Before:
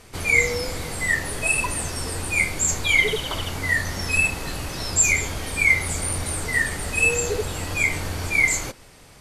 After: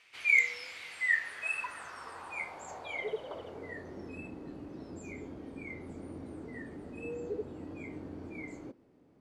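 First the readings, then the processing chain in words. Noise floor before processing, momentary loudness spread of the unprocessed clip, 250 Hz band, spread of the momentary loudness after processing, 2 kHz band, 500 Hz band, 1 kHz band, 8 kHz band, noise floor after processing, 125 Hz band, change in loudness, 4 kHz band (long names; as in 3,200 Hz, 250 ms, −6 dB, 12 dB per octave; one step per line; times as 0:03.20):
−48 dBFS, 10 LU, −9.0 dB, 16 LU, −12.5 dB, −12.0 dB, −13.5 dB, −31.0 dB, −63 dBFS, −21.0 dB, −14.0 dB, −21.5 dB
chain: band-pass filter sweep 2,500 Hz → 290 Hz, 0:00.88–0:04.24
hard clipping −11 dBFS, distortion −27 dB
level −4 dB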